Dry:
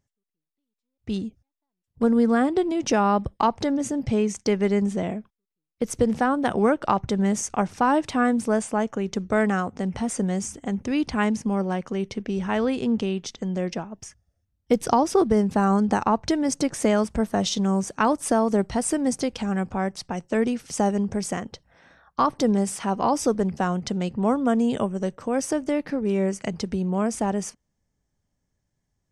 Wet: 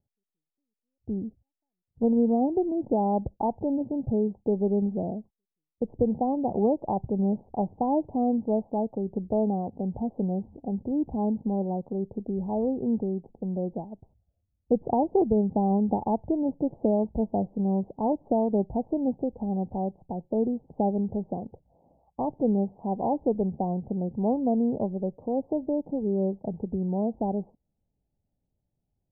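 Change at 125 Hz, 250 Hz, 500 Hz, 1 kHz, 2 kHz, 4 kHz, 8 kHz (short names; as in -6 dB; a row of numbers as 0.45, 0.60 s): -3.0 dB, -3.0 dB, -3.0 dB, -6.0 dB, under -40 dB, under -40 dB, under -40 dB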